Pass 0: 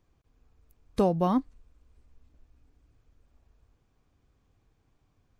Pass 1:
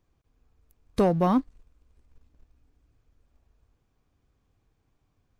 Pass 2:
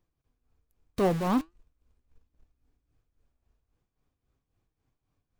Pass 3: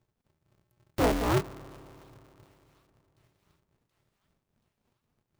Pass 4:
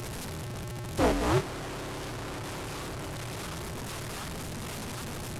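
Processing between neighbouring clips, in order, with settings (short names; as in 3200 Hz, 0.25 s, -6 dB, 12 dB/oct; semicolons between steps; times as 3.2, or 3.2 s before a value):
sample leveller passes 1
tremolo 3.7 Hz, depth 66%; in parallel at -4 dB: companded quantiser 2-bit; on the sum: flange 1.3 Hz, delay 5.5 ms, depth 3.1 ms, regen +80%
thin delay 0.728 s, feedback 58%, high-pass 2200 Hz, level -23.5 dB; spring tank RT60 3.3 s, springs 30 ms, chirp 40 ms, DRR 17 dB; polarity switched at an audio rate 120 Hz
delta modulation 64 kbps, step -31 dBFS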